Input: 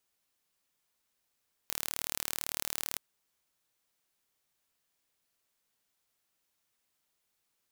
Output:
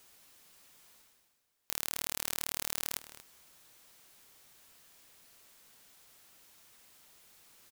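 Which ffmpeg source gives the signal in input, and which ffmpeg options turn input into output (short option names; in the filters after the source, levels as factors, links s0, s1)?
-f lavfi -i "aevalsrc='0.473*eq(mod(n,1164),0)':d=1.29:s=44100"
-filter_complex "[0:a]areverse,acompressor=mode=upward:threshold=0.00631:ratio=2.5,areverse,asplit=2[s0][s1];[s1]adelay=233.2,volume=0.224,highshelf=f=4000:g=-5.25[s2];[s0][s2]amix=inputs=2:normalize=0"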